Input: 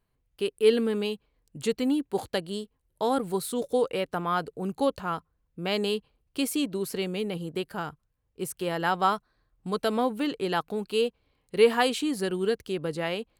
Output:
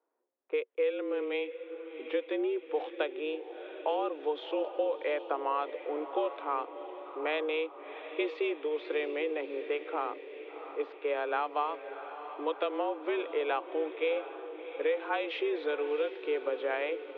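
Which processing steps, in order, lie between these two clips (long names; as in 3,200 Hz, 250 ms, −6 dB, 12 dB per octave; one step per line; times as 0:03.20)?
low-pass that shuts in the quiet parts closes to 1,300 Hz, open at −21.5 dBFS
downward compressor 10 to 1, threshold −29 dBFS, peak gain reduction 15.5 dB
speed change −22%
feedback delay with all-pass diffusion 703 ms, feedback 52%, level −11 dB
single-sideband voice off tune +150 Hz 190–3,400 Hz
level +2 dB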